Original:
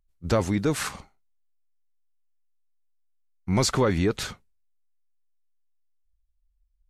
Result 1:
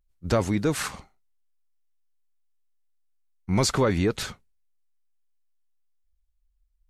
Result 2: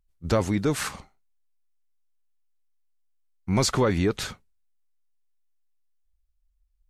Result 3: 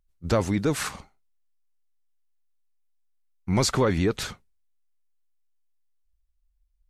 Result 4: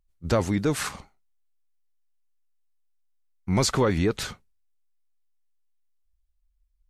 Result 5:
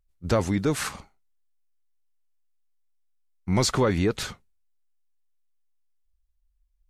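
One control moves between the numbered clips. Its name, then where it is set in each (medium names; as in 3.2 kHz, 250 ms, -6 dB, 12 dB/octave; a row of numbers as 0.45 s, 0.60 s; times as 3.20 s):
vibrato, rate: 0.57 Hz, 2.6 Hz, 15 Hz, 6.7 Hz, 1.3 Hz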